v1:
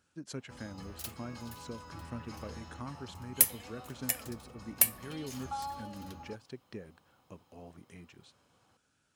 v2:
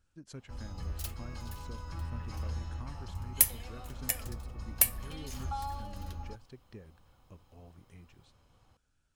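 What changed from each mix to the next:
speech −7.0 dB
master: remove high-pass filter 160 Hz 12 dB per octave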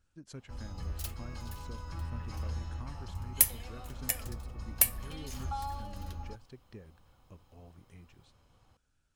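nothing changed

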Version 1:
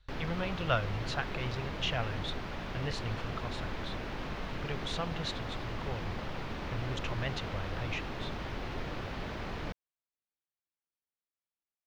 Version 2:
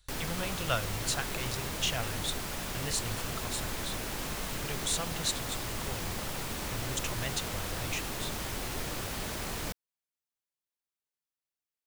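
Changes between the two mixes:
speech −3.0 dB
master: remove high-frequency loss of the air 270 metres

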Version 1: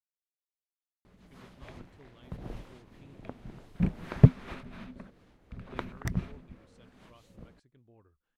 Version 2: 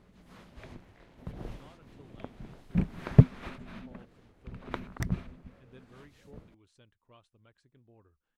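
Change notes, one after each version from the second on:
background: entry −1.05 s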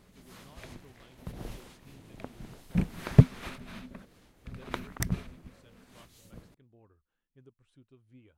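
speech: entry −1.15 s
background: remove low-pass filter 2,000 Hz 6 dB per octave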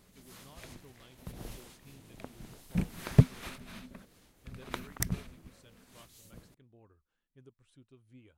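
background −3.5 dB
master: add high-shelf EQ 4,600 Hz +8.5 dB

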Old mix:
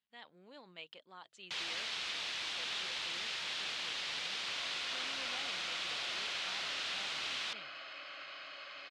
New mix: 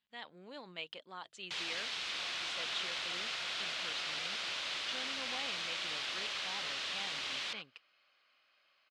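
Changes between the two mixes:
speech +6.0 dB
second sound: entry −2.35 s

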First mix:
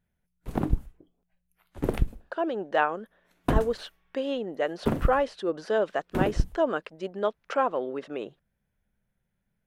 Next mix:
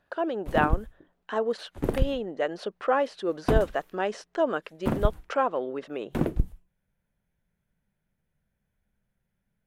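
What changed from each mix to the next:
speech: entry −2.20 s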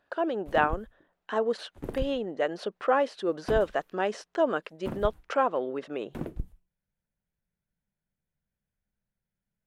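background −9.5 dB

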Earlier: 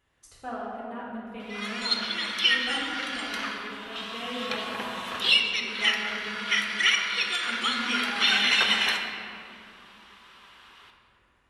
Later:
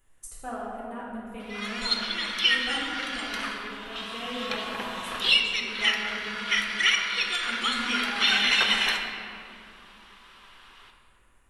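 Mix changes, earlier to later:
speech: add high shelf with overshoot 6,400 Hz +11.5 dB, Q 1.5
master: remove high-pass filter 62 Hz 12 dB per octave

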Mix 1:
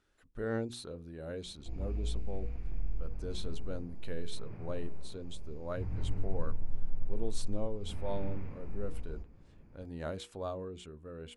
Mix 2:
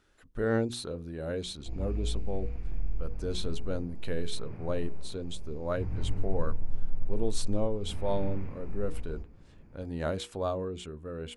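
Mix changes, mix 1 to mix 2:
speech +7.0 dB
background +3.0 dB

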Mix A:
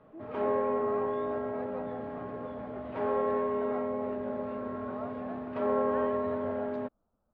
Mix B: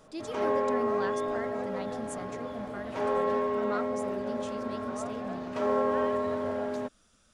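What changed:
speech: remove transistor ladder low-pass 1,000 Hz, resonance 50%
master: remove high-frequency loss of the air 450 metres

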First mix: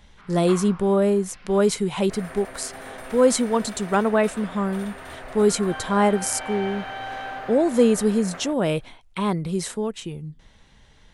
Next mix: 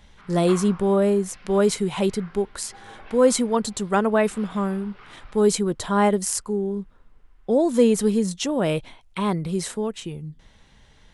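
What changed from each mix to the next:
second sound: muted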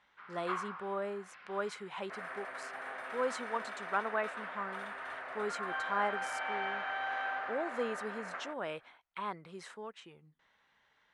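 speech −7.5 dB
second sound: unmuted
master: add resonant band-pass 1,400 Hz, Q 1.2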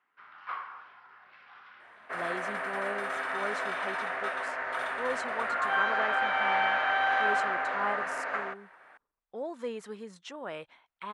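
speech: entry +1.85 s
second sound +10.0 dB

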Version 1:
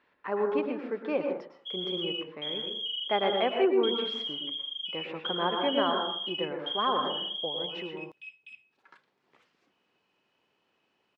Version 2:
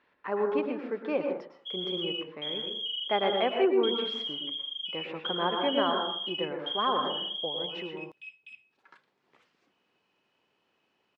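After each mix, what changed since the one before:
nothing changed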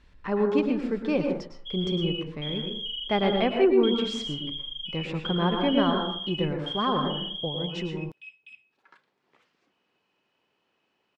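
speech: remove band-pass filter 430–2,200 Hz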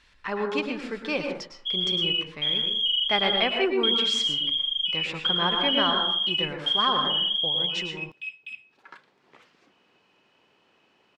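speech: add tilt shelving filter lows −9 dB, about 770 Hz
background +10.0 dB

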